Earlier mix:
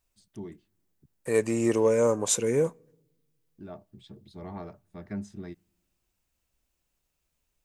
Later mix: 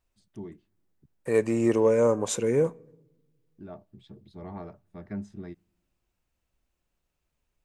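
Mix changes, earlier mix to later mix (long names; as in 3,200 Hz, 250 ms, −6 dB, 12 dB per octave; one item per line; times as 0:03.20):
second voice: send +7.5 dB
master: add high-shelf EQ 3,900 Hz −10 dB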